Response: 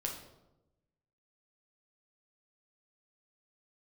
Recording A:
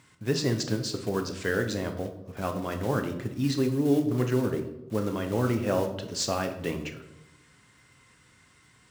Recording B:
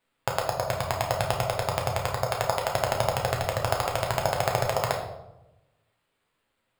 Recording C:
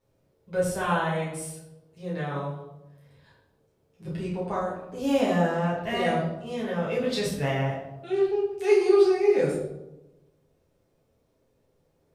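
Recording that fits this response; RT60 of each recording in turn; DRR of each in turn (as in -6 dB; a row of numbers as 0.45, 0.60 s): B; 1.0, 0.95, 0.95 s; 5.0, -0.5, -8.0 dB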